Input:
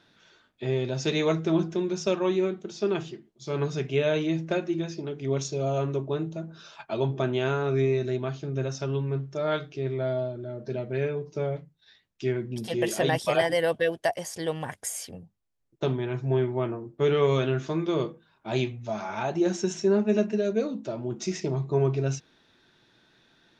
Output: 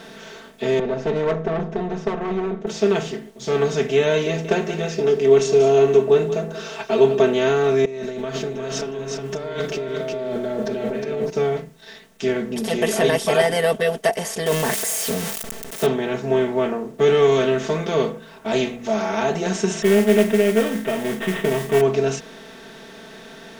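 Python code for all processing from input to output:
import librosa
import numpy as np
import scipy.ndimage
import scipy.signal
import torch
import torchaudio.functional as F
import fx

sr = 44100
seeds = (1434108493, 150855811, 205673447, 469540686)

y = fx.chain(x, sr, fx.lowpass(hz=1100.0, slope=12),
    fx.tube_stage(drive_db=23.0, bias=0.75),
    fx.band_squash(depth_pct=40), at=(0.79, 2.67))
y = fx.chain(y, sr, fx.small_body(hz=(410.0, 2700.0), ring_ms=45, db=11),
    fx.echo_single(ms=183, db=-18.0), at=(4.26, 7.33))
y = fx.chain(y, sr, fx.over_compress(threshold_db=-39.0, ratio=-1.0),
    fx.echo_single(ms=361, db=-6.5), at=(7.85, 11.3))
y = fx.chain(y, sr, fx.crossing_spikes(level_db=-29.5),
    fx.sustainer(db_per_s=22.0), at=(14.46, 15.86))
y = fx.chain(y, sr, fx.sample_sort(block=8),
    fx.resample_bad(factor=6, down='none', up='filtered'),
    fx.mod_noise(seeds[0], snr_db=25), at=(19.82, 21.81))
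y = fx.bin_compress(y, sr, power=0.6)
y = y + 0.92 * np.pad(y, (int(4.5 * sr / 1000.0), 0))[:len(y)]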